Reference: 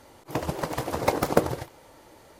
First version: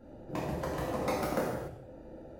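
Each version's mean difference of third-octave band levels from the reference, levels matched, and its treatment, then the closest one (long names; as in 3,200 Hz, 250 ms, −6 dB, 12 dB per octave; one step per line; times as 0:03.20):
6.5 dB: adaptive Wiener filter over 41 samples
downward compressor 2.5 to 1, threshold −43 dBFS, peak gain reduction 19.5 dB
reverb whose tail is shaped and stops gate 320 ms falling, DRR −7.5 dB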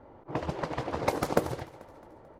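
5.0 dB: low-pass that shuts in the quiet parts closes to 1,000 Hz, open at −20 dBFS
in parallel at +2 dB: downward compressor, threshold −37 dBFS, peak gain reduction 22.5 dB
on the sum: repeating echo 219 ms, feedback 49%, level −20 dB
level −6 dB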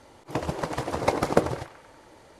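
2.0 dB: low-pass filter 11,000 Hz 24 dB per octave
high-shelf EQ 7,900 Hz −4.5 dB
on a send: feedback echo with a band-pass in the loop 95 ms, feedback 68%, band-pass 1,700 Hz, level −12.5 dB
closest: third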